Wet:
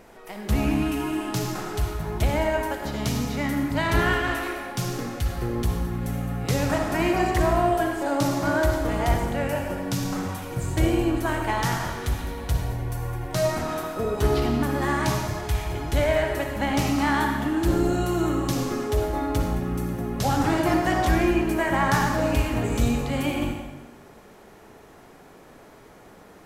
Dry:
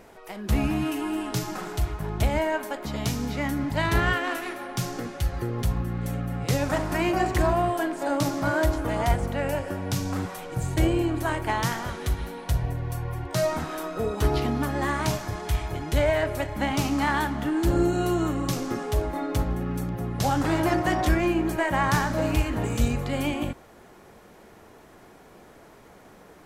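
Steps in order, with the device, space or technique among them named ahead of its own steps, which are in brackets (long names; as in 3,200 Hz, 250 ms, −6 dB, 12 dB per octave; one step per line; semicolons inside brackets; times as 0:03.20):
bathroom (convolution reverb RT60 1.1 s, pre-delay 51 ms, DRR 3 dB)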